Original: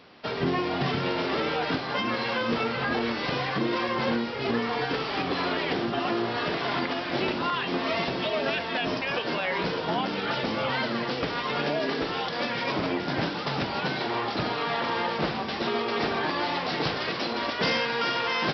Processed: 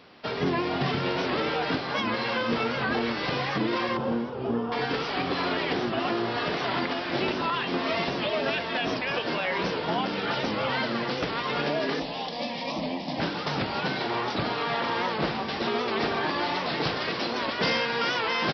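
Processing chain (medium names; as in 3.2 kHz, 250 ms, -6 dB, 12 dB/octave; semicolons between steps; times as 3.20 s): 3.97–4.72 s: boxcar filter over 21 samples; 12.00–13.20 s: static phaser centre 390 Hz, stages 6; on a send: feedback delay 325 ms, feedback 46%, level -16.5 dB; on the sum: warped record 78 rpm, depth 100 cents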